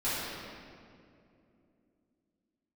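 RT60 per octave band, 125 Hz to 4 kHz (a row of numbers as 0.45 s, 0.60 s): 3.2 s, 3.9 s, 3.0 s, 2.1 s, 1.9 s, 1.5 s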